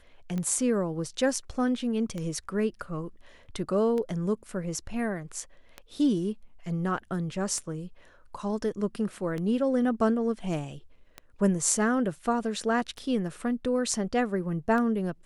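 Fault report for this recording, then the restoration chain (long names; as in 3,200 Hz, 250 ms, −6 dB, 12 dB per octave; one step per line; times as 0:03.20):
scratch tick 33 1/3 rpm −21 dBFS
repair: click removal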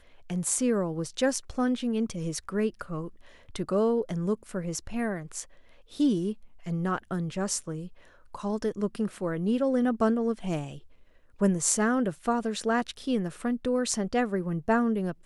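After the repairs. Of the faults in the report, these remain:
none of them is left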